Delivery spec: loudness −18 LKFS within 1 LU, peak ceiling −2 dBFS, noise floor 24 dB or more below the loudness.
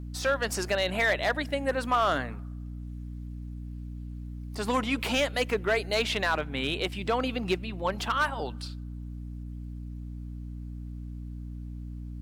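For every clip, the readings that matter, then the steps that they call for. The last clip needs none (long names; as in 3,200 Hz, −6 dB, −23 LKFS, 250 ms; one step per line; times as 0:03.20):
share of clipped samples 0.4%; peaks flattened at −18.0 dBFS; mains hum 60 Hz; hum harmonics up to 300 Hz; level of the hum −36 dBFS; integrated loudness −28.5 LKFS; sample peak −18.0 dBFS; target loudness −18.0 LKFS
→ clipped peaks rebuilt −18 dBFS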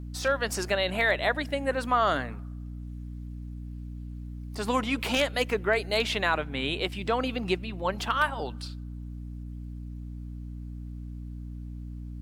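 share of clipped samples 0.0%; mains hum 60 Hz; hum harmonics up to 300 Hz; level of the hum −36 dBFS
→ hum removal 60 Hz, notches 5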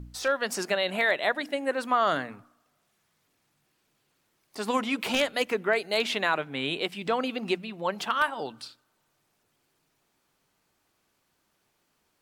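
mains hum none found; integrated loudness −28.0 LKFS; sample peak −8.5 dBFS; target loudness −18.0 LKFS
→ level +10 dB
brickwall limiter −2 dBFS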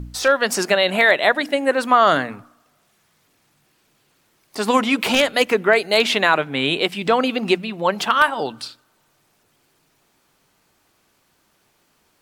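integrated loudness −18.0 LKFS; sample peak −2.0 dBFS; background noise floor −64 dBFS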